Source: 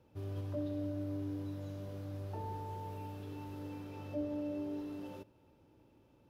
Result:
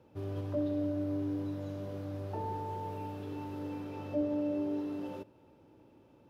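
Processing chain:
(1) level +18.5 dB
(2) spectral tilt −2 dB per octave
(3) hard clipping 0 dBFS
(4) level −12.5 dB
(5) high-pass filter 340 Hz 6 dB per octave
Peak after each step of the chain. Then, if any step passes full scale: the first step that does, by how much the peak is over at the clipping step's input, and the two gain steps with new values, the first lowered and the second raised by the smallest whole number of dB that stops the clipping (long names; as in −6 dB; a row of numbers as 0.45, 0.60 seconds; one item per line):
−9.0, −5.0, −5.0, −17.5, −22.5 dBFS
no step passes full scale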